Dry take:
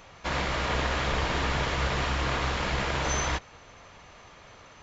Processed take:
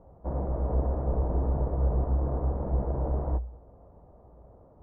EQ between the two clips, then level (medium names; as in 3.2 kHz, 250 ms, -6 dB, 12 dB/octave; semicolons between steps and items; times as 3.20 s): inverse Chebyshev low-pass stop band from 4.2 kHz, stop band 80 dB; distance through air 80 m; peaking EQ 60 Hz +13 dB 0.22 oct; 0.0 dB